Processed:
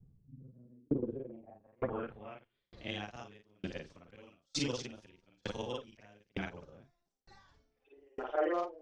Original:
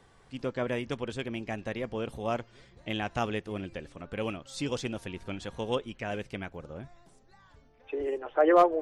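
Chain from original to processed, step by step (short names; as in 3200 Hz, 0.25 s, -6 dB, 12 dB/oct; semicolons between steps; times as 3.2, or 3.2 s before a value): short-time reversal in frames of 0.115 s; low-pass sweep 160 Hz -> 5700 Hz, 0.48–2.93; dB-ramp tremolo decaying 1.1 Hz, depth 38 dB; gain +5 dB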